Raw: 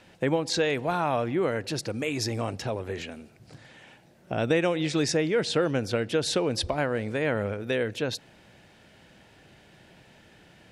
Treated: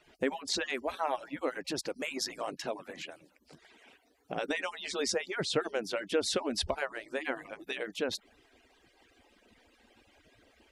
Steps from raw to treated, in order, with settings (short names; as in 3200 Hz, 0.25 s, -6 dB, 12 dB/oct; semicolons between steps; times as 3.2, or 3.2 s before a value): median-filter separation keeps percussive; 2.43–4.4 low shelf 73 Hz -11.5 dB; gain -3 dB